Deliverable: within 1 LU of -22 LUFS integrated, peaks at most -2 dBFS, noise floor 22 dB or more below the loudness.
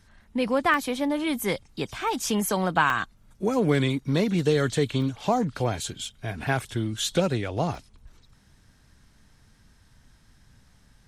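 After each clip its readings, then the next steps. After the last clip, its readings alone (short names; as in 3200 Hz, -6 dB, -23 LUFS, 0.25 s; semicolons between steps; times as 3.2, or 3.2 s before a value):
dropouts 5; longest dropout 1.1 ms; loudness -26.0 LUFS; peak -7.5 dBFS; loudness target -22.0 LUFS
-> interpolate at 0.74/2.9/5.02/6.63/7.75, 1.1 ms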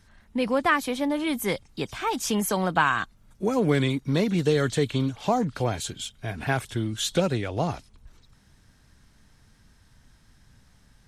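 dropouts 0; loudness -26.0 LUFS; peak -7.5 dBFS; loudness target -22.0 LUFS
-> gain +4 dB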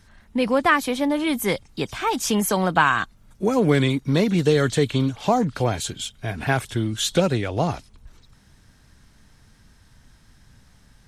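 loudness -22.0 LUFS; peak -3.5 dBFS; noise floor -55 dBFS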